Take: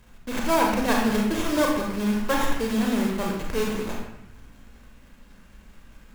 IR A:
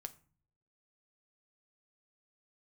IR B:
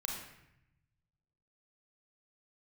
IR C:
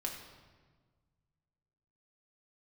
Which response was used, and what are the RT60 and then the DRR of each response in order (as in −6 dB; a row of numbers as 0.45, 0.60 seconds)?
B; 0.45, 0.80, 1.5 seconds; 9.0, −1.0, −0.5 decibels